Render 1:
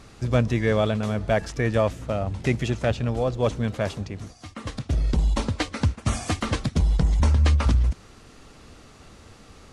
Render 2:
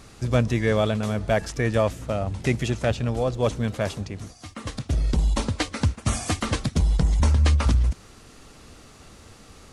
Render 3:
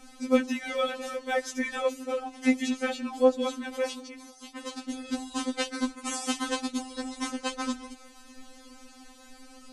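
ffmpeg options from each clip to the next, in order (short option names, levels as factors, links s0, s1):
-af "highshelf=f=7600:g=8.5"
-af "afftfilt=real='re*3.46*eq(mod(b,12),0)':imag='im*3.46*eq(mod(b,12),0)':win_size=2048:overlap=0.75"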